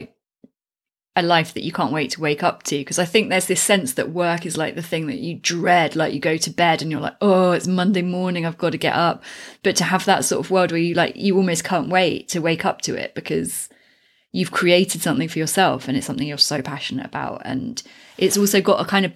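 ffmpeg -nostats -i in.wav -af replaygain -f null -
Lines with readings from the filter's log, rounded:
track_gain = -0.8 dB
track_peak = 0.529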